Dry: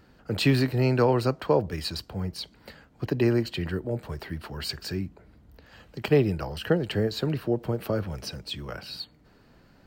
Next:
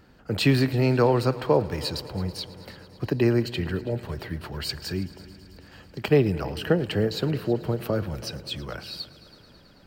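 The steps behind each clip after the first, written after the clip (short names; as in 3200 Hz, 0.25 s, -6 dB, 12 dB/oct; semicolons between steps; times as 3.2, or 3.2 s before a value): multi-head echo 0.109 s, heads all three, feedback 66%, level -23 dB; gain +1.5 dB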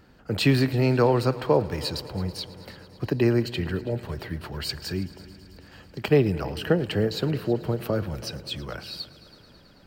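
nothing audible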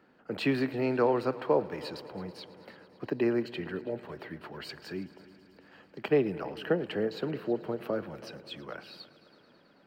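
three-band isolator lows -23 dB, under 180 Hz, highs -13 dB, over 3100 Hz; gain -4.5 dB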